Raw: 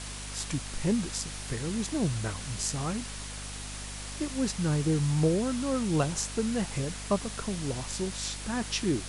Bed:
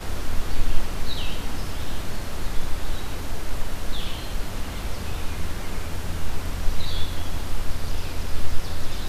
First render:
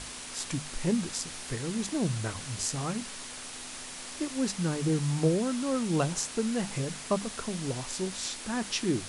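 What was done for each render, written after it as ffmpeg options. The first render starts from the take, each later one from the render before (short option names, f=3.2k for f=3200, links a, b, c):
-af "bandreject=f=50:t=h:w=6,bandreject=f=100:t=h:w=6,bandreject=f=150:t=h:w=6,bandreject=f=200:t=h:w=6"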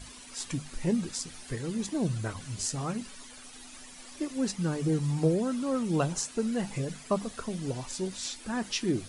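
-af "afftdn=nr=12:nf=-42"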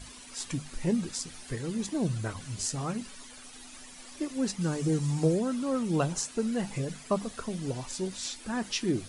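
-filter_complex "[0:a]asettb=1/sr,asplit=3[a][b][c];[a]atrim=end=4.614[d];[b]atrim=start=4.61:end=5.39,asetpts=PTS-STARTPTS,afade=t=in:d=0.004:c=qsin,afade=t=out:st=0.776:d=0.004:c=qsin,equalizer=f=7k:t=o:w=1:g=5[e];[c]atrim=start=5.386[f];[d][e]acrossfade=d=0.004:c1=hsin:c2=qsin[g];[g][f]acrossfade=d=0.004:c1=qsin:c2=hsin"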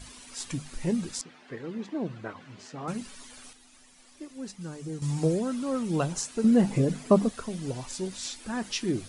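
-filter_complex "[0:a]asettb=1/sr,asplit=3[a][b][c];[a]atrim=end=1.214[d];[b]atrim=start=1.21:end=2.88,asetpts=PTS-STARTPTS,afade=t=in:d=0.004:c=qsin,afade=t=out:st=1.666:d=0.004:c=qsin,highpass=230,lowpass=2.4k[e];[c]atrim=start=2.876[f];[d][e]acrossfade=d=0.004:c1=hsin:c2=qsin[g];[g][f]acrossfade=d=0.004:c1=qsin:c2=hsin,asettb=1/sr,asplit=3[h][i][j];[h]atrim=end=6.444[k];[i]atrim=start=6.44:end=7.3,asetpts=PTS-STARTPTS,afade=t=in:d=0.004:c=qsin,afade=t=out:st=0.856:d=0.004:c=qsin,equalizer=f=280:t=o:w=2.7:g=11.5[l];[j]atrim=start=7.296[m];[k][l]acrossfade=d=0.004:c1=hsin:c2=qsin[n];[n][m]acrossfade=d=0.004:c1=qsin:c2=hsin,asplit=3[o][p][q];[o]atrim=end=3.532[r];[p]atrim=start=3.528:end=5.022,asetpts=PTS-STARTPTS,volume=-9dB[s];[q]atrim=start=5.018[t];[r][s]acrossfade=d=0.004:c1=hsin:c2=hsin[u];[u][t]acrossfade=d=0.004:c1=hsin:c2=hsin"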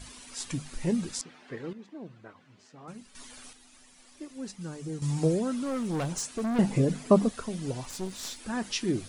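-filter_complex "[0:a]asettb=1/sr,asplit=3[a][b][c];[a]atrim=end=5.644[d];[b]atrim=start=5.64:end=6.59,asetpts=PTS-STARTPTS,afade=t=in:d=0.004:c=qsin,afade=t=out:st=0.946:d=0.004:c=qsin,asoftclip=type=hard:threshold=-27.5dB[e];[c]atrim=start=6.586[f];[d][e]acrossfade=d=0.004:c1=hsin:c2=qsin[g];[g][f]acrossfade=d=0.004:c1=qsin:c2=hsin,asettb=1/sr,asplit=3[h][i][j];[h]atrim=end=7.854[k];[i]atrim=start=7.85:end=8.4,asetpts=PTS-STARTPTS,afade=t=in:d=0.004:c=qsin,afade=t=out:st=0.546:d=0.004:c=qsin,aeval=exprs='clip(val(0),-1,0.00944)':c=same[l];[j]atrim=start=8.396[m];[k][l]acrossfade=d=0.004:c1=hsin:c2=qsin[n];[n][m]acrossfade=d=0.004:c1=qsin:c2=hsin,asplit=3[o][p][q];[o]atrim=end=1.732[r];[p]atrim=start=1.728:end=3.152,asetpts=PTS-STARTPTS,volume=-11dB[s];[q]atrim=start=3.148[t];[r][s]acrossfade=d=0.004:c1=hsin:c2=hsin[u];[u][t]acrossfade=d=0.004:c1=hsin:c2=hsin"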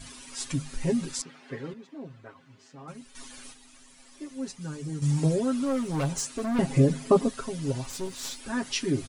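-af "bandreject=f=720:w=24,aecho=1:1:7.4:0.78"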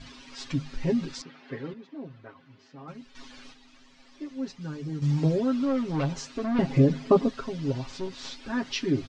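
-af "lowpass=f=5.1k:w=0.5412,lowpass=f=5.1k:w=1.3066,equalizer=f=290:t=o:w=0.44:g=2.5"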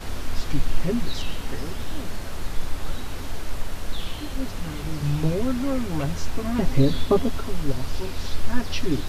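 -filter_complex "[1:a]volume=-2dB[a];[0:a][a]amix=inputs=2:normalize=0"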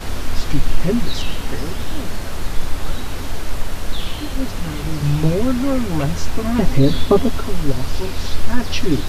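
-af "volume=6.5dB,alimiter=limit=-2dB:level=0:latency=1"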